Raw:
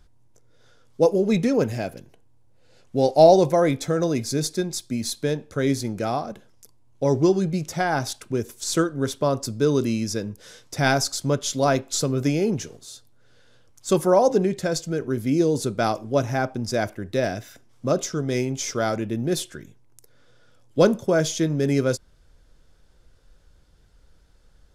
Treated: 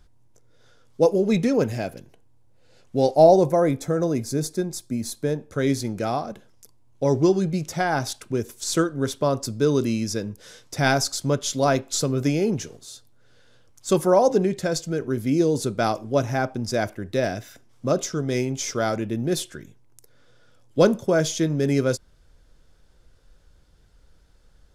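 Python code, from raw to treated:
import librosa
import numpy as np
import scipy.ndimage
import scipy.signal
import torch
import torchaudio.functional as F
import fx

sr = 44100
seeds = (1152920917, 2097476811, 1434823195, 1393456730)

y = fx.peak_eq(x, sr, hz=3400.0, db=-8.5, octaves=1.8, at=(3.15, 5.52))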